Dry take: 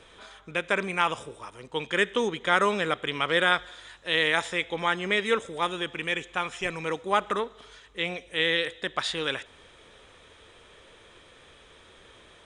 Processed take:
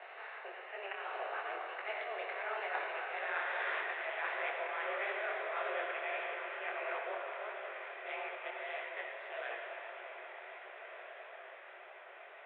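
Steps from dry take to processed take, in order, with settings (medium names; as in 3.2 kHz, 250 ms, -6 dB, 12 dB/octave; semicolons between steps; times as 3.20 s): spectral levelling over time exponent 0.6; Doppler pass-by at 3.19 s, 22 m/s, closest 4.8 m; slow attack 270 ms; reverse; compression 16:1, threshold -46 dBFS, peak gain reduction 30.5 dB; reverse; mistuned SSB +210 Hz 150–2500 Hz; echo that smears into a reverb 1569 ms, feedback 53%, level -9.5 dB; on a send at -1.5 dB: reverberation RT60 3.1 s, pre-delay 48 ms; on the sum: detune thickener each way 55 cents; trim +14.5 dB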